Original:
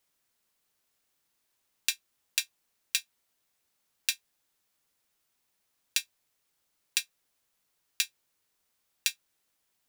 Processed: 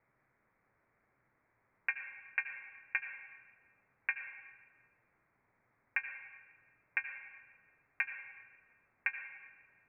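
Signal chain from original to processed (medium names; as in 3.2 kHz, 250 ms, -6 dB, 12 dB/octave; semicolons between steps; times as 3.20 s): steep low-pass 2.3 kHz 96 dB/octave; peaking EQ 120 Hz +9.5 dB 0.38 oct; on a send: reverberation RT60 1.4 s, pre-delay 67 ms, DRR 7 dB; on the sum: trim +9 dB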